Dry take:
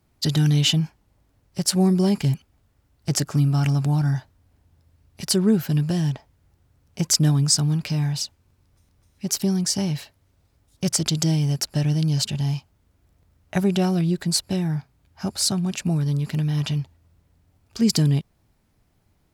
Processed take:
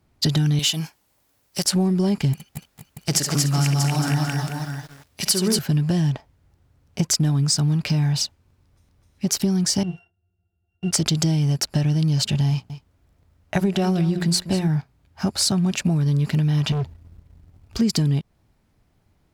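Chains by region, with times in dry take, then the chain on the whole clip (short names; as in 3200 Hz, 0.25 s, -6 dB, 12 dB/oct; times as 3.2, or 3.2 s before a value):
0.59–1.65 RIAA curve recording + compressor 1.5:1, threshold -23 dBFS
2.33–5.59 tilt +2.5 dB/oct + tapped delay 44/66/71/235/475/635 ms -18.5/-10/-10.5/-3.5/-12/-9 dB + lo-fi delay 0.222 s, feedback 35%, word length 7-bit, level -9.5 dB
9.83–10.91 sample sorter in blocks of 16 samples + tone controls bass -5 dB, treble +1 dB + octave resonator F, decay 0.14 s
12.5–14.68 notches 60/120/180/240/300/360/420/480 Hz + echo 0.197 s -15 dB
16.72–17.79 low shelf 140 Hz +11.5 dB + hard clip -27.5 dBFS
whole clip: high shelf 6400 Hz -6 dB; compressor, threshold -24 dBFS; sample leveller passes 1; gain +3.5 dB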